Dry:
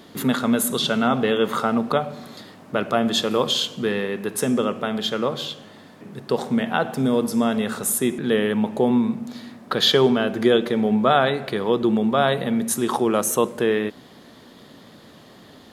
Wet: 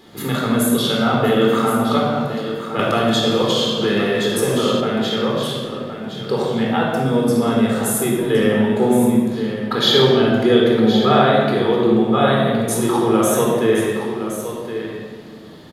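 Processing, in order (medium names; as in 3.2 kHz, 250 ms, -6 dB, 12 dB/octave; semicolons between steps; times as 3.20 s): delay 1067 ms -10 dB; reverberation RT60 1.6 s, pre-delay 20 ms, DRR -3 dB; 2.79–4.81 s: three bands compressed up and down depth 70%; trim -3.5 dB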